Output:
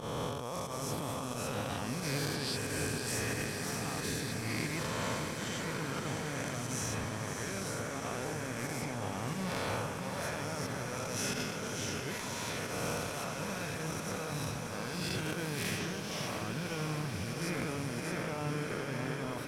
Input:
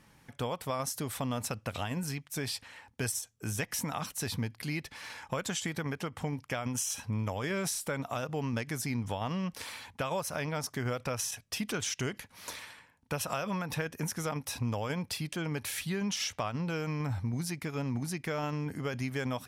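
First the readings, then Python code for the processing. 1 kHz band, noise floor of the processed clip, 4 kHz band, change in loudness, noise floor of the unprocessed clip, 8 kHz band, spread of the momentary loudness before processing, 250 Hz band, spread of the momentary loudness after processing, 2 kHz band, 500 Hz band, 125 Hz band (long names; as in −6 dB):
−0.5 dB, −40 dBFS, 0.0 dB, −1.5 dB, −64 dBFS, −2.0 dB, 5 LU, −2.0 dB, 3 LU, +1.0 dB, −0.5 dB, −2.5 dB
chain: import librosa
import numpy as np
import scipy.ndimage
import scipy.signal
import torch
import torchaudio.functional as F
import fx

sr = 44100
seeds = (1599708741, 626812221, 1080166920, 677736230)

y = fx.spec_swells(x, sr, rise_s=2.76)
y = fx.high_shelf(y, sr, hz=6100.0, db=-8.5)
y = fx.over_compress(y, sr, threshold_db=-33.0, ratio=-0.5)
y = fx.transient(y, sr, attack_db=-7, sustain_db=2)
y = fx.volume_shaper(y, sr, bpm=90, per_beat=1, depth_db=-12, release_ms=73.0, shape='fast start')
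y = fx.echo_diffused(y, sr, ms=604, feedback_pct=77, wet_db=-6.0)
y = y * 10.0 ** (-4.0 / 20.0)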